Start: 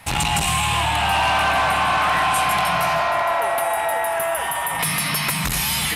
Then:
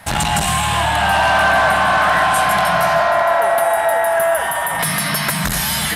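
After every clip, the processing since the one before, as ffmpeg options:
ffmpeg -i in.wav -af "equalizer=frequency=200:width_type=o:width=0.33:gain=5,equalizer=frequency=630:width_type=o:width=0.33:gain=7,equalizer=frequency=1600:width_type=o:width=0.33:gain=7,equalizer=frequency=2500:width_type=o:width=0.33:gain=-6,volume=2.5dB" out.wav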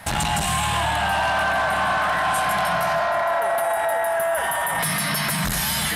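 ffmpeg -i in.wav -af "alimiter=limit=-15dB:level=0:latency=1:release=21" out.wav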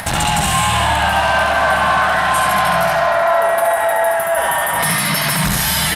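ffmpeg -i in.wav -filter_complex "[0:a]acompressor=mode=upward:threshold=-26dB:ratio=2.5,asplit=2[link_01][link_02];[link_02]aecho=0:1:70:0.668[link_03];[link_01][link_03]amix=inputs=2:normalize=0,volume=5dB" out.wav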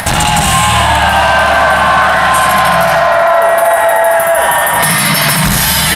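ffmpeg -i in.wav -af "alimiter=limit=-9dB:level=0:latency=1,volume=8dB" out.wav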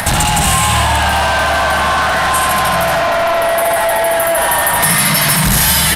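ffmpeg -i in.wav -filter_complex "[0:a]acrossover=split=110|7100[link_01][link_02][link_03];[link_01]acrusher=bits=6:mix=0:aa=0.000001[link_04];[link_02]asoftclip=type=tanh:threshold=-12dB[link_05];[link_04][link_05][link_03]amix=inputs=3:normalize=0,volume=1dB" out.wav

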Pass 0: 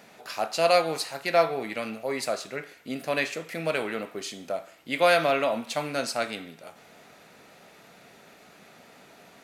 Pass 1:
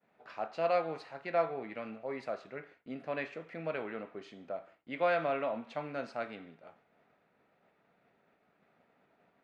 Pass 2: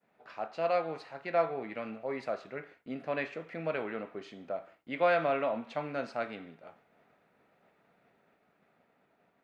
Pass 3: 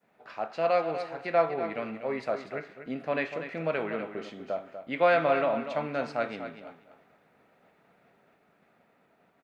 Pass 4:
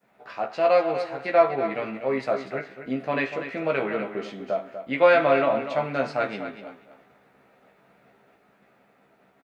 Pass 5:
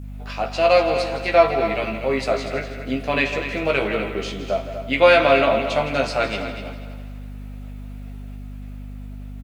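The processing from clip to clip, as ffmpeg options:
ffmpeg -i in.wav -af "agate=range=-33dB:threshold=-45dB:ratio=3:detection=peak,lowpass=2000,volume=-8.5dB" out.wav
ffmpeg -i in.wav -af "dynaudnorm=framelen=200:gausssize=13:maxgain=3dB" out.wav
ffmpeg -i in.wav -af "aecho=1:1:243|486:0.316|0.0538,volume=4dB" out.wav
ffmpeg -i in.wav -filter_complex "[0:a]asplit=2[link_01][link_02];[link_02]adelay=15,volume=-4dB[link_03];[link_01][link_03]amix=inputs=2:normalize=0,volume=3.5dB" out.wav
ffmpeg -i in.wav -af "aeval=exprs='val(0)+0.0158*(sin(2*PI*50*n/s)+sin(2*PI*2*50*n/s)/2+sin(2*PI*3*50*n/s)/3+sin(2*PI*4*50*n/s)/4+sin(2*PI*5*50*n/s)/5)':channel_layout=same,aexciter=amount=2.6:drive=6.6:freq=2500,aecho=1:1:164|328|492|656|820|984:0.224|0.121|0.0653|0.0353|0.019|0.0103,volume=3.5dB" out.wav

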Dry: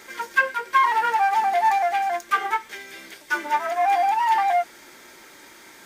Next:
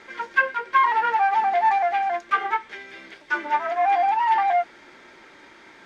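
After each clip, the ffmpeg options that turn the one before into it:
ffmpeg -i in.wav -af "lowpass=3300" out.wav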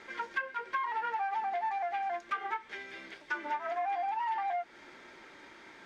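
ffmpeg -i in.wav -af "acompressor=threshold=-27dB:ratio=6,volume=-4.5dB" out.wav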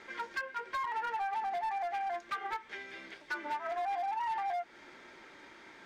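ffmpeg -i in.wav -af "volume=29.5dB,asoftclip=hard,volume=-29.5dB,volume=-1dB" out.wav

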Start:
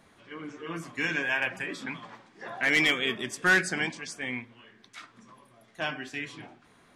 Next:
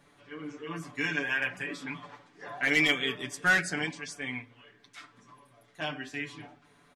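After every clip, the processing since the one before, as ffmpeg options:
ffmpeg -i in.wav -af "aecho=1:1:6.9:0.76,volume=-4dB" out.wav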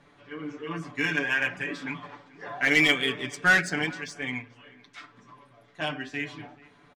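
ffmpeg -i in.wav -filter_complex "[0:a]adynamicsmooth=sensitivity=6:basefreq=5800,asplit=2[link_01][link_02];[link_02]adelay=437.3,volume=-22dB,highshelf=frequency=4000:gain=-9.84[link_03];[link_01][link_03]amix=inputs=2:normalize=0,volume=4dB" out.wav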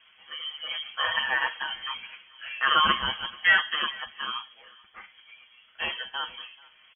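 ffmpeg -i in.wav -af "lowpass=frequency=2900:width_type=q:width=0.5098,lowpass=frequency=2900:width_type=q:width=0.6013,lowpass=frequency=2900:width_type=q:width=0.9,lowpass=frequency=2900:width_type=q:width=2.563,afreqshift=-3400" out.wav

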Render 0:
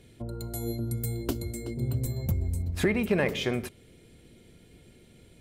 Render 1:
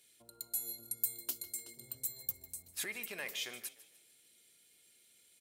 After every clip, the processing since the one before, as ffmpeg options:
ffmpeg -i in.wav -filter_complex "[0:a]aderivative,asplit=5[link_01][link_02][link_03][link_04][link_05];[link_02]adelay=150,afreqshift=36,volume=-17dB[link_06];[link_03]adelay=300,afreqshift=72,volume=-24.5dB[link_07];[link_04]adelay=450,afreqshift=108,volume=-32.1dB[link_08];[link_05]adelay=600,afreqshift=144,volume=-39.6dB[link_09];[link_01][link_06][link_07][link_08][link_09]amix=inputs=5:normalize=0,volume=1dB" out.wav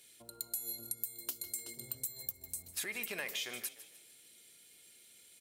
ffmpeg -i in.wav -af "acompressor=threshold=-41dB:ratio=10,volume=6dB" out.wav

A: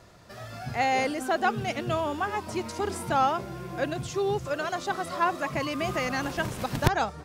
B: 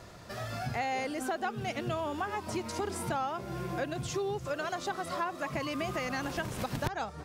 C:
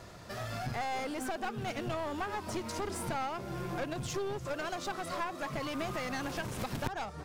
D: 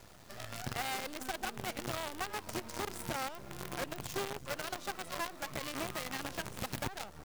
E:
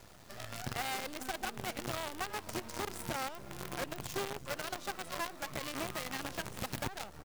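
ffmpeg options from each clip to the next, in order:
ffmpeg -i in.wav -af "acompressor=threshold=-36dB:ratio=4,volume=3.5dB" out.wav
ffmpeg -i in.wav -af "aeval=exprs='clip(val(0),-1,0.015)':channel_layout=same" out.wav
ffmpeg -i in.wav -af "acrusher=bits=6:dc=4:mix=0:aa=0.000001,volume=-3.5dB" out.wav
ffmpeg -i in.wav -af "aecho=1:1:411:0.0631" out.wav

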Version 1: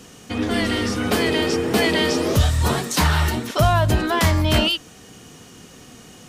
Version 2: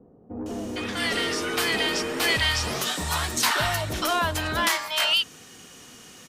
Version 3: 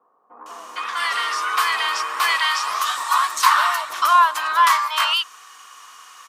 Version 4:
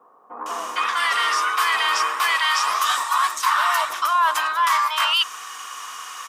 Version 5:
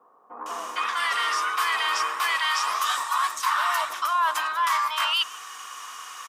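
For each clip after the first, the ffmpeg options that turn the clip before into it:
ffmpeg -i in.wav -filter_complex "[0:a]lowshelf=frequency=340:gain=-10.5,acrossover=split=670[link_01][link_02];[link_02]adelay=460[link_03];[link_01][link_03]amix=inputs=2:normalize=0,acrossover=split=730|4800[link_04][link_05][link_06];[link_04]asoftclip=type=tanh:threshold=-28dB[link_07];[link_07][link_05][link_06]amix=inputs=3:normalize=0" out.wav
ffmpeg -i in.wav -af "highpass=frequency=1100:width_type=q:width=8.4" out.wav
ffmpeg -i in.wav -af "bandreject=frequency=4300:width=13,areverse,acompressor=threshold=-27dB:ratio=5,areverse,volume=9dB" out.wav
ffmpeg -i in.wav -filter_complex "[0:a]asplit=2[link_01][link_02];[link_02]adelay=150,highpass=300,lowpass=3400,asoftclip=type=hard:threshold=-17.5dB,volume=-21dB[link_03];[link_01][link_03]amix=inputs=2:normalize=0,volume=-4.5dB" out.wav

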